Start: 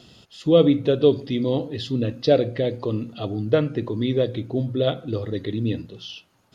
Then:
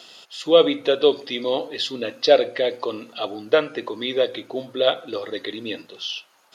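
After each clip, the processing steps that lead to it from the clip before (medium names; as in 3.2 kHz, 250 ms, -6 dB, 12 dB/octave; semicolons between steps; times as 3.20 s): high-pass 660 Hz 12 dB/octave; trim +8 dB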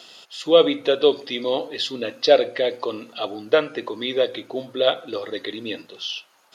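no audible change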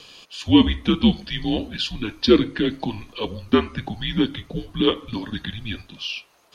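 frequency shift -220 Hz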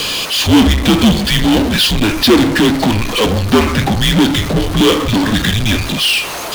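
power-law waveshaper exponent 0.35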